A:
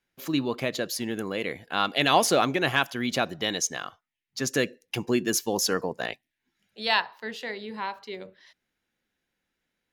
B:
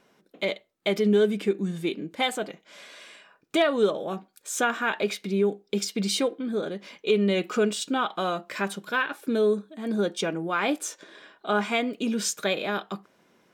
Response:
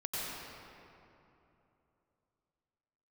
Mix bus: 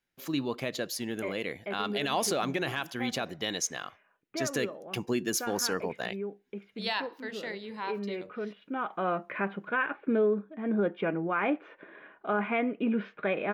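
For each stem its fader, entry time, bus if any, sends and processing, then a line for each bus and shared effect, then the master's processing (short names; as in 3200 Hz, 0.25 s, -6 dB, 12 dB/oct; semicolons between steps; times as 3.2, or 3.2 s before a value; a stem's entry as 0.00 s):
-4.0 dB, 0.00 s, no send, dry
-1.0 dB, 0.80 s, no send, steep low-pass 2500 Hz 36 dB/oct; auto duck -12 dB, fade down 1.90 s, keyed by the first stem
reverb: off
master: limiter -19 dBFS, peak gain reduction 7 dB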